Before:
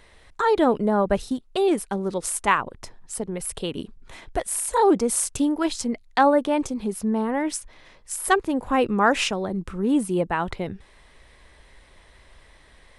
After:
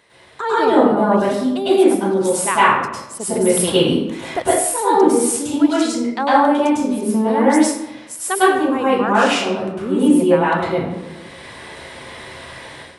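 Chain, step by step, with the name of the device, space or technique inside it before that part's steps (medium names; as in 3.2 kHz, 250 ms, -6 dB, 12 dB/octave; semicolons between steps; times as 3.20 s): far laptop microphone (reverberation RT60 0.90 s, pre-delay 97 ms, DRR -10 dB; high-pass 160 Hz 12 dB/octave; level rider); trim -1 dB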